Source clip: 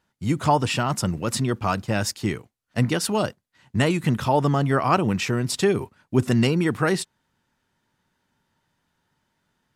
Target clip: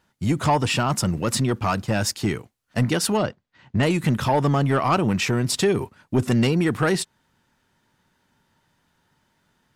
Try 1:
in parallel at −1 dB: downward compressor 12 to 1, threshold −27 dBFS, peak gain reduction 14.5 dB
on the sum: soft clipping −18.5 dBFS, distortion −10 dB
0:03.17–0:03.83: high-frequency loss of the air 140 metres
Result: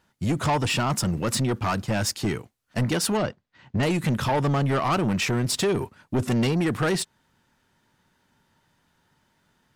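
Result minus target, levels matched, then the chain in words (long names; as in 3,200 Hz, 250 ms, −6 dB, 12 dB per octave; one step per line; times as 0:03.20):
soft clipping: distortion +7 dB
in parallel at −1 dB: downward compressor 12 to 1, threshold −27 dBFS, peak gain reduction 14.5 dB
on the sum: soft clipping −11.5 dBFS, distortion −17 dB
0:03.17–0:03.83: high-frequency loss of the air 140 metres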